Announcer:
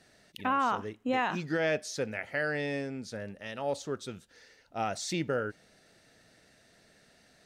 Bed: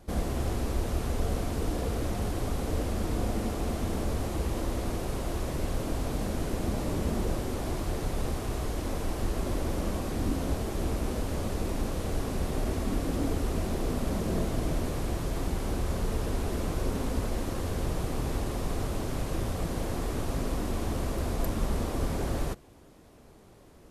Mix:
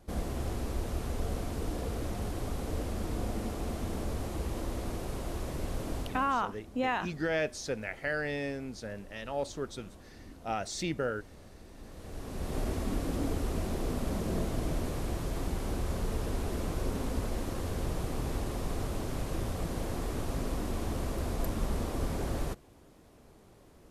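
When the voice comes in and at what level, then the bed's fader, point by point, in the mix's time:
5.70 s, −1.5 dB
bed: 0:06.00 −4.5 dB
0:06.46 −21 dB
0:11.70 −21 dB
0:12.57 −3 dB

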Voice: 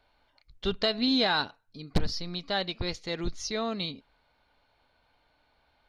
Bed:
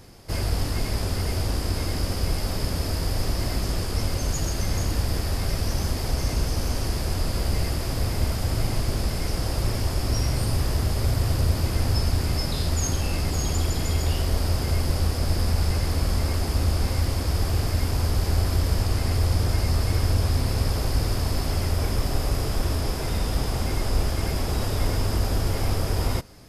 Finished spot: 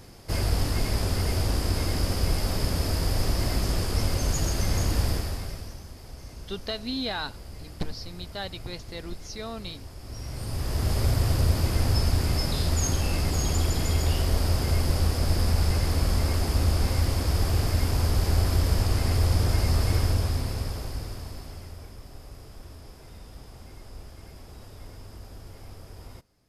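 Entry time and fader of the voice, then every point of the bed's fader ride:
5.85 s, −5.5 dB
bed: 0:05.08 0 dB
0:05.84 −17.5 dB
0:09.98 −17.5 dB
0:10.92 −0.5 dB
0:19.95 −0.5 dB
0:21.97 −20 dB

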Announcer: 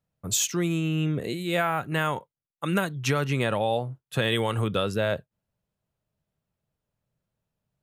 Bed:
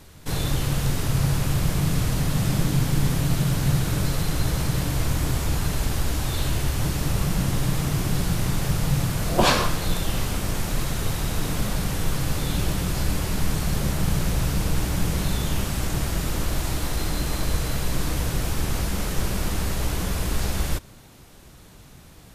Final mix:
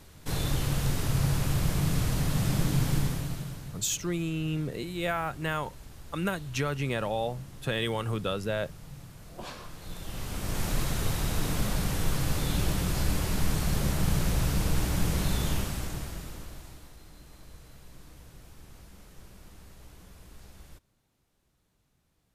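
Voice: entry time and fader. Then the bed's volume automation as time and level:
3.50 s, −5.0 dB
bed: 0:02.95 −4.5 dB
0:03.84 −23 dB
0:09.56 −23 dB
0:10.64 −3.5 dB
0:15.50 −3.5 dB
0:16.99 −25.5 dB

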